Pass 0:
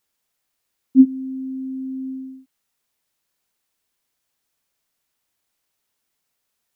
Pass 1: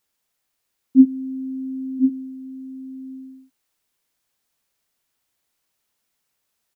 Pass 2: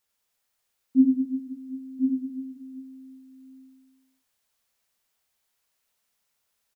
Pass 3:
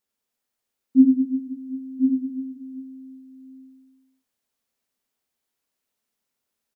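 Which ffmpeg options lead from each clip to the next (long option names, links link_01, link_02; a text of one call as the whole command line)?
ffmpeg -i in.wav -af "aecho=1:1:1043:0.473" out.wav
ffmpeg -i in.wav -af "equalizer=frequency=100:width_type=o:width=0.33:gain=-3,equalizer=frequency=160:width_type=o:width=0.33:gain=-9,equalizer=frequency=315:width_type=o:width=0.33:gain=-11,aecho=1:1:90|202.5|343.1|518.9|738.6:0.631|0.398|0.251|0.158|0.1,volume=-3dB" out.wav
ffmpeg -i in.wav -af "equalizer=frequency=280:width_type=o:width=1.6:gain=10.5,volume=-6dB" out.wav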